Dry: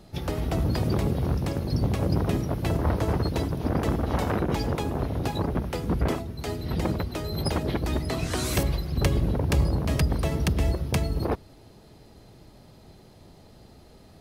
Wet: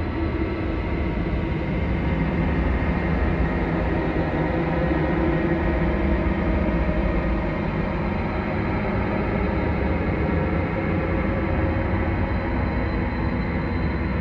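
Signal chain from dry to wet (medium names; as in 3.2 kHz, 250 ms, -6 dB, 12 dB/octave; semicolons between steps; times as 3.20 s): LFO low-pass square 1.2 Hz 350–2100 Hz; Schroeder reverb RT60 2 s, combs from 33 ms, DRR -8 dB; Paulstretch 40×, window 0.10 s, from 6.78 s; trim -4.5 dB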